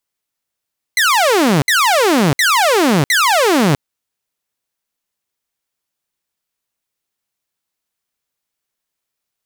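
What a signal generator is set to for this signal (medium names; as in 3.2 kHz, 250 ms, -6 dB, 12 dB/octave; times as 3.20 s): burst of laser zaps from 2.1 kHz, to 130 Hz, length 0.65 s saw, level -7.5 dB, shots 4, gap 0.06 s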